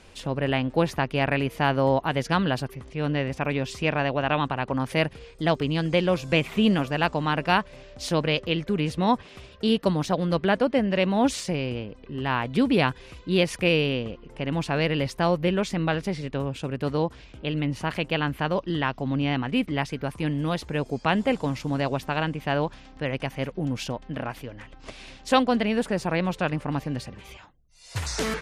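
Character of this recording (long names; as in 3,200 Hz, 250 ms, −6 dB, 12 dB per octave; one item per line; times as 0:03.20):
background noise floor −48 dBFS
spectral slope −4.5 dB per octave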